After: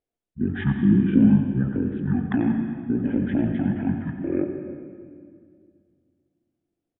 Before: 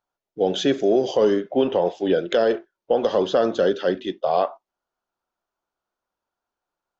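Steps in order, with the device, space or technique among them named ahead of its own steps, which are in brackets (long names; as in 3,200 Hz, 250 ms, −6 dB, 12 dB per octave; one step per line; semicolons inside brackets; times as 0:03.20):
monster voice (pitch shifter −12 semitones; low-shelf EQ 120 Hz +8.5 dB; single-tap delay 89 ms −12 dB; convolution reverb RT60 2.1 s, pre-delay 94 ms, DRR 7 dB)
0:00.77–0:01.51: dynamic equaliser 250 Hz, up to +6 dB, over −26 dBFS, Q 1
level −6 dB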